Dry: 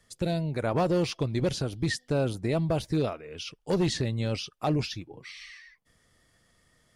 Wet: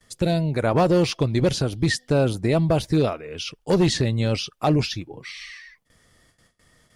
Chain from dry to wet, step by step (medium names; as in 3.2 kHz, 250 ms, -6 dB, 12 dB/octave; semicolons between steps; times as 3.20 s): gate with hold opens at -55 dBFS; trim +7 dB